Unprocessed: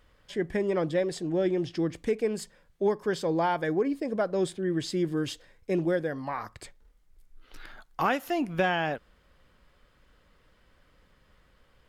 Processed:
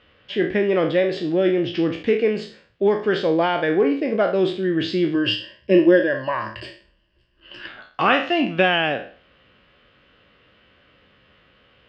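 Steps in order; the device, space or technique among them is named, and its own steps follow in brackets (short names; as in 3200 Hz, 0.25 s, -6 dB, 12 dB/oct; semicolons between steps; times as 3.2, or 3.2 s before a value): spectral trails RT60 0.43 s; 5.14–7.67 ripple EQ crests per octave 1.3, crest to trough 14 dB; guitar cabinet (speaker cabinet 100–4100 Hz, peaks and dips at 160 Hz -4 dB, 920 Hz -6 dB, 2800 Hz +8 dB); gain +7.5 dB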